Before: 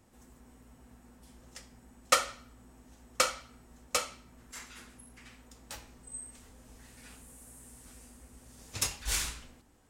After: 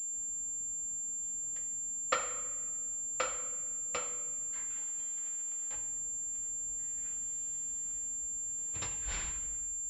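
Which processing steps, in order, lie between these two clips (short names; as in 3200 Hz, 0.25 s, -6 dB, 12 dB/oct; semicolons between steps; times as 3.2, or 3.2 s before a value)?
4.77–5.7 spectral whitening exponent 0.3; shoebox room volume 2400 m³, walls mixed, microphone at 0.74 m; pulse-width modulation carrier 7300 Hz; gain -6 dB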